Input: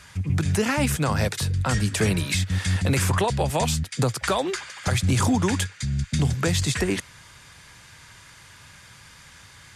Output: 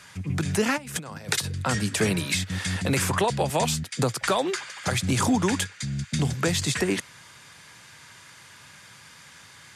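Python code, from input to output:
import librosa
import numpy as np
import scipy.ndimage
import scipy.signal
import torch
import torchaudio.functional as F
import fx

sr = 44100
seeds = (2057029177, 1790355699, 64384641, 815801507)

y = fx.over_compress(x, sr, threshold_db=-30.0, ratio=-0.5, at=(0.76, 1.43), fade=0.02)
y = scipy.signal.sosfilt(scipy.signal.butter(2, 140.0, 'highpass', fs=sr, output='sos'), y)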